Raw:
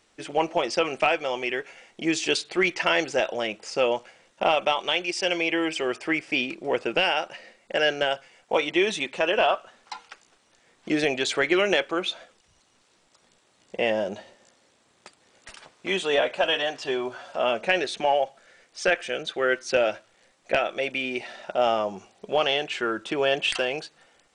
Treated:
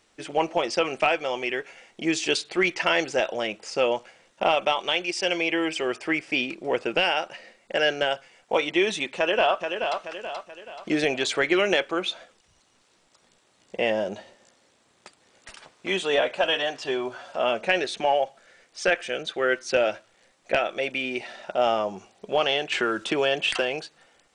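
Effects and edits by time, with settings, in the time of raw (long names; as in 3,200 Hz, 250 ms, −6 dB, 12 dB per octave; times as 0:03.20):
0:09.17–0:10.00: delay throw 430 ms, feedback 45%, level −6 dB
0:22.72–0:23.62: multiband upward and downward compressor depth 70%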